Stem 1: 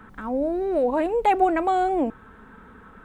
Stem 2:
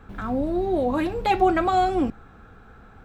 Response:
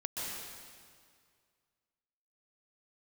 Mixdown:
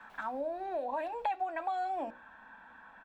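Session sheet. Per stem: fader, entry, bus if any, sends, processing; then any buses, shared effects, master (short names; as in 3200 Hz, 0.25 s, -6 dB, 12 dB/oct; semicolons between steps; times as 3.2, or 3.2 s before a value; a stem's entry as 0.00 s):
-6.0 dB, 0.00 s, no send, three-band isolator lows -22 dB, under 350 Hz, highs -22 dB, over 4800 Hz; notches 60/120/180/240/300/360/420/480/540/600 Hz; comb 1.2 ms, depth 98%
-2.0 dB, 5.4 ms, no send, HPF 640 Hz 24 dB/oct; auto duck -11 dB, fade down 0.45 s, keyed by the first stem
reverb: off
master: compressor 4:1, threshold -33 dBFS, peak gain reduction 14 dB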